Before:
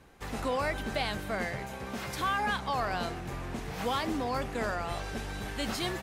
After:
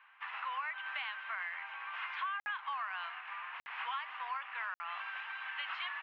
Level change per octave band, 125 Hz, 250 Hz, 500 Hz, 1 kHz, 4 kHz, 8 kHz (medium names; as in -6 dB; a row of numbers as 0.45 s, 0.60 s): under -40 dB, under -40 dB, -28.0 dB, -6.0 dB, -7.5 dB, under -35 dB